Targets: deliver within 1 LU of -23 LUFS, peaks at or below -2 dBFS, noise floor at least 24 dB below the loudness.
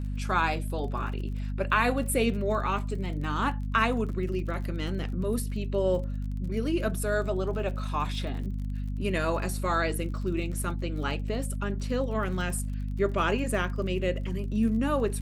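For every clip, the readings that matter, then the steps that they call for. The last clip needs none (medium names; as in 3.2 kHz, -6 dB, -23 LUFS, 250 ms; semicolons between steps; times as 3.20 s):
tick rate 47 per s; hum 50 Hz; highest harmonic 250 Hz; hum level -29 dBFS; loudness -29.5 LUFS; peak level -10.5 dBFS; loudness target -23.0 LUFS
-> de-click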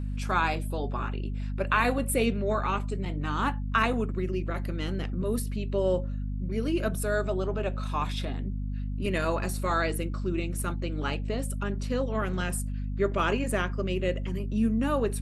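tick rate 0.20 per s; hum 50 Hz; highest harmonic 250 Hz; hum level -29 dBFS
-> de-hum 50 Hz, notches 5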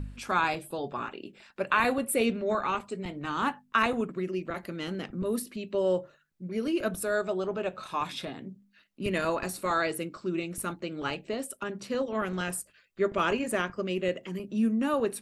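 hum not found; loudness -30.5 LUFS; peak level -11.0 dBFS; loudness target -23.0 LUFS
-> trim +7.5 dB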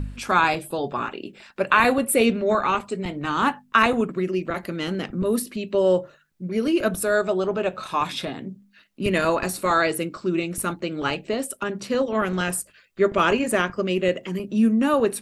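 loudness -23.0 LUFS; peak level -3.5 dBFS; noise floor -58 dBFS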